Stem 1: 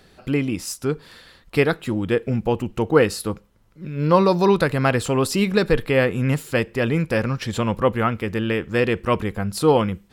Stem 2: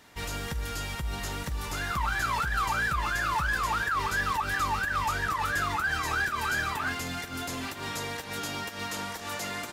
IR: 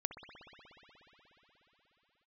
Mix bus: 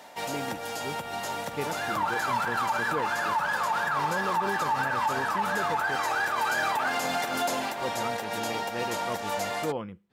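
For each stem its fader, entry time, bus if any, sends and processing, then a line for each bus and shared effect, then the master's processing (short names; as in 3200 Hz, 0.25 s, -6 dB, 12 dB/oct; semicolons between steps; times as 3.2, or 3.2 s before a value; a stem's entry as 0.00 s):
-15.0 dB, 0.00 s, muted 5.96–7.79, no send, high shelf 4300 Hz -11 dB
+2.0 dB, 0.00 s, send -4 dB, Bessel high-pass 220 Hz, order 2; band shelf 690 Hz +10.5 dB 1 oct; auto duck -12 dB, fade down 0.30 s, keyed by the first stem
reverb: on, RT60 4.3 s, pre-delay 60 ms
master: HPF 120 Hz 12 dB/oct; limiter -19 dBFS, peak gain reduction 9 dB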